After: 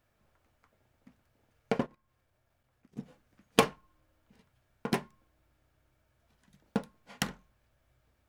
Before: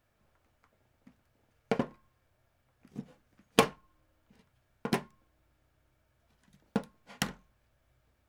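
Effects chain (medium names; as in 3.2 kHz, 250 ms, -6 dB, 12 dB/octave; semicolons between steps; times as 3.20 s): 1.86–2.97 s: level held to a coarse grid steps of 15 dB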